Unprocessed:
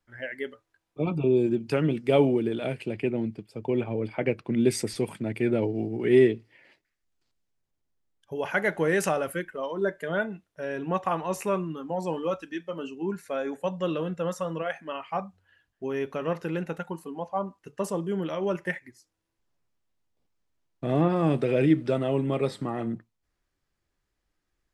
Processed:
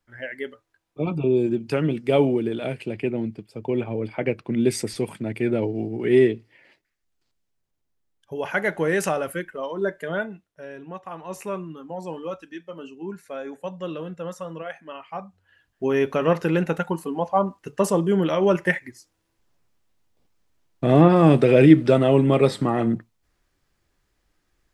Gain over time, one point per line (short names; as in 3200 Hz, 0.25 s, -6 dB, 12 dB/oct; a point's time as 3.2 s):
10.09 s +2 dB
11.05 s -10.5 dB
11.37 s -3 dB
15.19 s -3 dB
15.87 s +9 dB